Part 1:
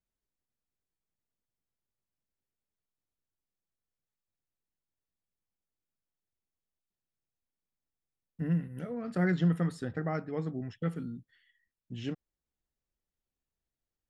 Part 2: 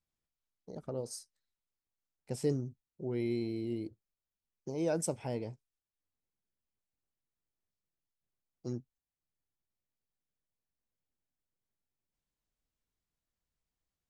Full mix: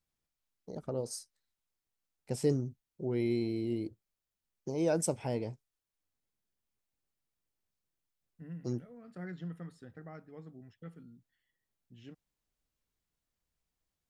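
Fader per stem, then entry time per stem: −15.0, +2.5 decibels; 0.00, 0.00 seconds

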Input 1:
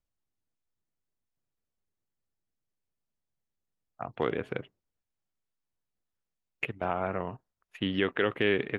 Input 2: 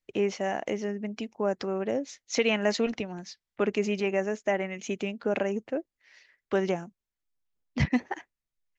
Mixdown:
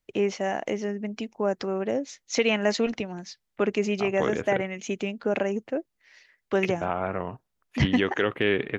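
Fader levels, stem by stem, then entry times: +2.5, +2.0 decibels; 0.00, 0.00 seconds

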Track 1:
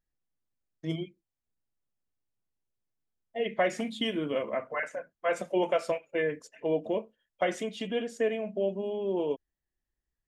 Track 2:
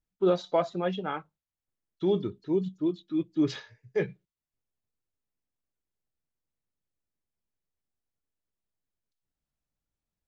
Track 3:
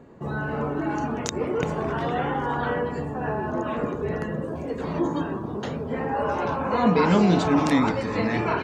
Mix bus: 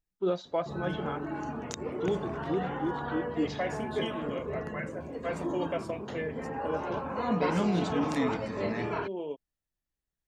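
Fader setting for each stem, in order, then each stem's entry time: −6.5, −5.0, −9.0 decibels; 0.00, 0.00, 0.45 seconds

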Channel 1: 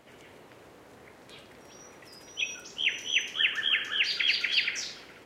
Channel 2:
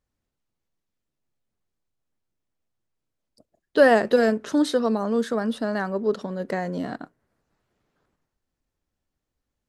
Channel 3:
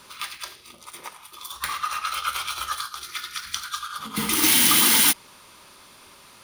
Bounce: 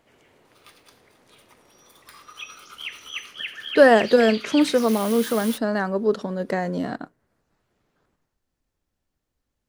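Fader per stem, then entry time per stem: −6.5, +2.5, −19.0 decibels; 0.00, 0.00, 0.45 seconds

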